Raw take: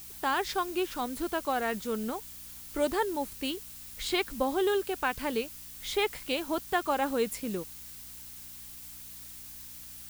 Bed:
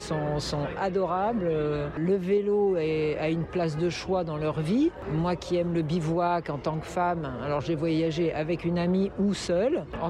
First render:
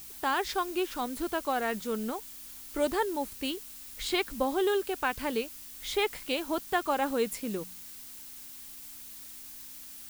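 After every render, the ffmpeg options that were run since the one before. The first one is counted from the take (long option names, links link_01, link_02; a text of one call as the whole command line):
ffmpeg -i in.wav -af "bandreject=frequency=60:width_type=h:width=4,bandreject=frequency=120:width_type=h:width=4,bandreject=frequency=180:width_type=h:width=4" out.wav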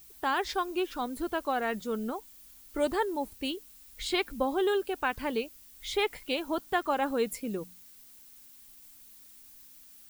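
ffmpeg -i in.wav -af "afftdn=noise_reduction=10:noise_floor=-46" out.wav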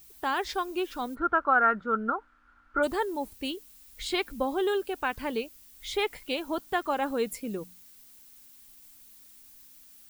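ffmpeg -i in.wav -filter_complex "[0:a]asplit=3[link_01][link_02][link_03];[link_01]afade=type=out:start_time=1.14:duration=0.02[link_04];[link_02]lowpass=frequency=1400:width_type=q:width=12,afade=type=in:start_time=1.14:duration=0.02,afade=type=out:start_time=2.82:duration=0.02[link_05];[link_03]afade=type=in:start_time=2.82:duration=0.02[link_06];[link_04][link_05][link_06]amix=inputs=3:normalize=0" out.wav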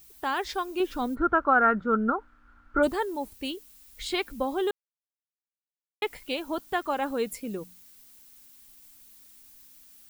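ffmpeg -i in.wav -filter_complex "[0:a]asettb=1/sr,asplit=3[link_01][link_02][link_03];[link_01]atrim=end=0.804[link_04];[link_02]atrim=start=0.8:end=2.89,asetpts=PTS-STARTPTS,afade=type=in:duration=0.004:curve=qsin,afade=type=out:start_time=2.086:duration=0.004:curve=qsin,lowshelf=frequency=450:gain=9[link_05];[link_03]atrim=start=2.886[link_06];[link_04][link_05]acrossfade=duration=0.004:curve1=hsin:curve2=qsin[link_07];[link_07][link_06]acrossfade=duration=0.004:curve1=qsin:curve2=hsin,asplit=3[link_08][link_09][link_10];[link_08]atrim=end=4.71,asetpts=PTS-STARTPTS,afade=type=out:start_time=4.706:duration=0.004:curve=hsin[link_11];[link_09]atrim=start=4.71:end=6.02,asetpts=PTS-STARTPTS,volume=0[link_12];[link_10]atrim=start=6.02,asetpts=PTS-STARTPTS,afade=type=in:duration=0.004:curve=hsin[link_13];[link_11][link_12][link_13]concat=n=3:v=0:a=1" out.wav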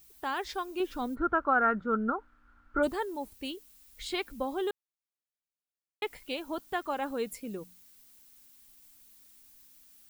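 ffmpeg -i in.wav -af "volume=-4.5dB" out.wav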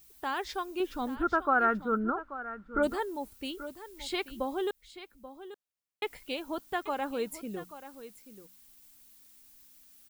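ffmpeg -i in.wav -af "aecho=1:1:834:0.2" out.wav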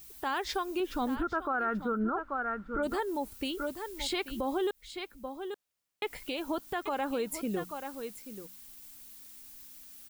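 ffmpeg -i in.wav -filter_complex "[0:a]asplit=2[link_01][link_02];[link_02]acompressor=threshold=-38dB:ratio=6,volume=2dB[link_03];[link_01][link_03]amix=inputs=2:normalize=0,alimiter=limit=-23.5dB:level=0:latency=1:release=79" out.wav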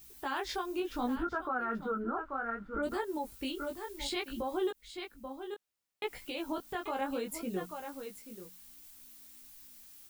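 ffmpeg -i in.wav -af "flanger=delay=16:depth=6.6:speed=0.65" out.wav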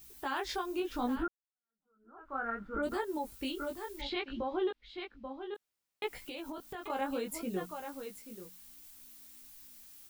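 ffmpeg -i in.wav -filter_complex "[0:a]asplit=3[link_01][link_02][link_03];[link_01]afade=type=out:start_time=4:duration=0.02[link_04];[link_02]lowpass=frequency=4000:width=0.5412,lowpass=frequency=4000:width=1.3066,afade=type=in:start_time=4:duration=0.02,afade=type=out:start_time=5.54:duration=0.02[link_05];[link_03]afade=type=in:start_time=5.54:duration=0.02[link_06];[link_04][link_05][link_06]amix=inputs=3:normalize=0,asettb=1/sr,asplit=3[link_07][link_08][link_09];[link_07]atrim=end=6.174[link_10];[link_08]atrim=start=6.17:end=6.9,asetpts=PTS-STARTPTS,afade=type=in:duration=0.004:curve=qsin,afade=type=out:start_time=0.726:duration=0.004:curve=qsin,acompressor=threshold=-38dB:ratio=6:attack=3.2:release=140:knee=1:detection=peak[link_11];[link_09]atrim=start=6.896[link_12];[link_10][link_11]acrossfade=duration=0.004:curve1=hsin:curve2=qsin[link_13];[link_13][link_12]acrossfade=duration=0.004:curve1=qsin:curve2=hsin,asplit=2[link_14][link_15];[link_14]atrim=end=1.28,asetpts=PTS-STARTPTS,afade=type=out:start_time=1.276:duration=0.004:curve=hsin[link_16];[link_15]atrim=start=1.28,asetpts=PTS-STARTPTS,afade=type=in:duration=1.08:curve=exp[link_17];[link_16][link_17]concat=n=2:v=0:a=1" out.wav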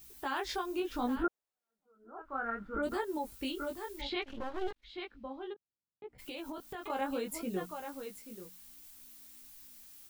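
ffmpeg -i in.wav -filter_complex "[0:a]asettb=1/sr,asplit=3[link_01][link_02][link_03];[link_01]atrim=end=1.244[link_04];[link_02]atrim=start=1.24:end=2.22,asetpts=PTS-STARTPTS,afade=type=in:duration=0.004:curve=qsin,afade=type=out:start_time=0.976:duration=0.004:curve=qsin,equalizer=frequency=590:width_type=o:width=1.8:gain=10.5[link_05];[link_03]atrim=start=2.216[link_06];[link_04][link_05]acrossfade=duration=0.004:curve1=hsin:curve2=qsin[link_07];[link_07][link_06]acrossfade=duration=0.004:curve1=qsin:curve2=hsin,asplit=3[link_08][link_09][link_10];[link_08]afade=type=out:start_time=4.22:duration=0.02[link_11];[link_09]aeval=exprs='max(val(0),0)':channel_layout=same,afade=type=in:start_time=4.22:duration=0.02,afade=type=out:start_time=4.83:duration=0.02[link_12];[link_10]afade=type=in:start_time=4.83:duration=0.02[link_13];[link_11][link_12][link_13]amix=inputs=3:normalize=0,asplit=3[link_14][link_15][link_16];[link_14]afade=type=out:start_time=5.52:duration=0.02[link_17];[link_15]bandpass=frequency=130:width_type=q:width=0.94,afade=type=in:start_time=5.52:duration=0.02,afade=type=out:start_time=6.18:duration=0.02[link_18];[link_16]afade=type=in:start_time=6.18:duration=0.02[link_19];[link_17][link_18][link_19]amix=inputs=3:normalize=0" out.wav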